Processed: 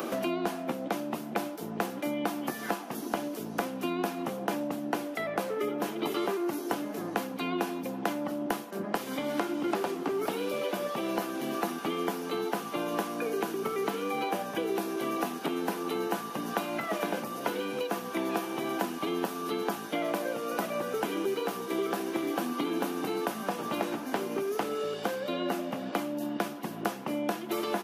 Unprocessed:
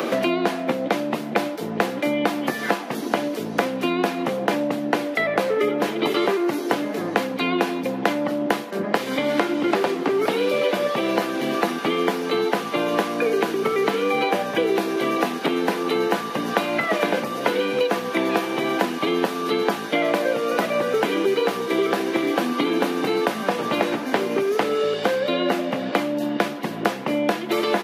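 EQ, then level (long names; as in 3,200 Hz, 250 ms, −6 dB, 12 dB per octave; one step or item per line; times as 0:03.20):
octave-band graphic EQ 125/250/500/1,000/2,000/4,000/8,000 Hz −9/−5/−10/−4/−11/−9/−3 dB
0.0 dB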